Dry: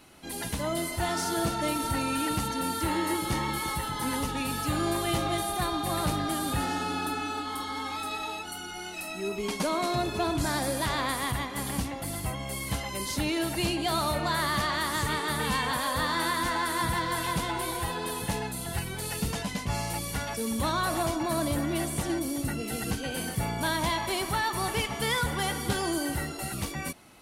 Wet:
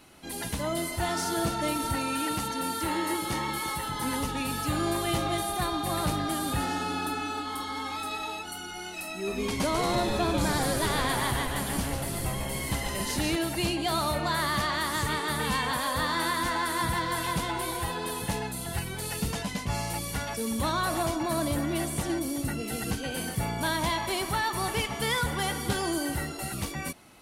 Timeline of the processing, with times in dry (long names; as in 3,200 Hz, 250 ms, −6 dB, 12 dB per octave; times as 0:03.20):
0:01.95–0:03.86: low-shelf EQ 150 Hz −7.5 dB
0:09.13–0:13.36: echo with shifted repeats 143 ms, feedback 56%, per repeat −140 Hz, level −4 dB